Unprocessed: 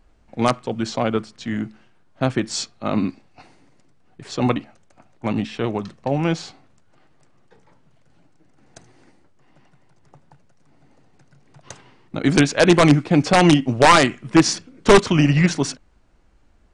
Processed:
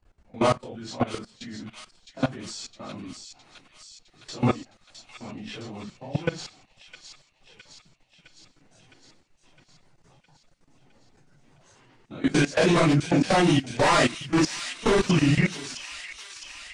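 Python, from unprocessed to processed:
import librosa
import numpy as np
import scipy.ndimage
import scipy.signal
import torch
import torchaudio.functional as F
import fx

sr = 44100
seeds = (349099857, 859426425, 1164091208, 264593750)

y = fx.phase_scramble(x, sr, seeds[0], window_ms=100)
y = fx.level_steps(y, sr, step_db=19)
y = fx.echo_wet_highpass(y, sr, ms=661, feedback_pct=66, hz=2700.0, wet_db=-6.0)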